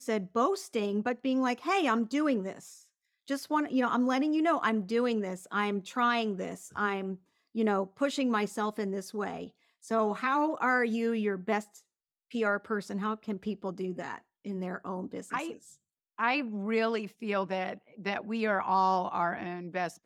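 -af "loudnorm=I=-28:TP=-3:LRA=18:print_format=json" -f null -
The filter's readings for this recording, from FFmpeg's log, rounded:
"input_i" : "-31.1",
"input_tp" : "-14.1",
"input_lra" : "3.9",
"input_thresh" : "-41.5",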